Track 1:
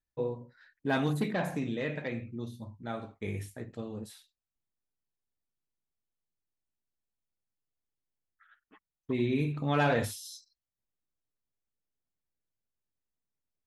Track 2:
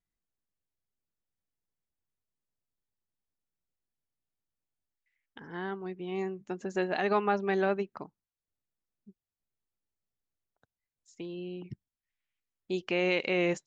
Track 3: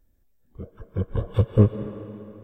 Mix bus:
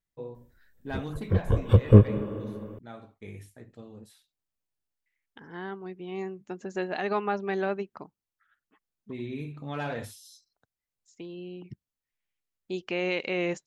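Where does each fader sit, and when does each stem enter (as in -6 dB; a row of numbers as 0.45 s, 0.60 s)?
-7.0 dB, -1.0 dB, +2.0 dB; 0.00 s, 0.00 s, 0.35 s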